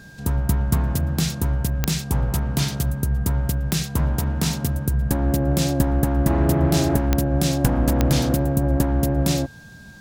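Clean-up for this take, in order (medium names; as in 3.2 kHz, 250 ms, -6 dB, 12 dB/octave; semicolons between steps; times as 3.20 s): de-click; band-stop 1.6 kHz, Q 30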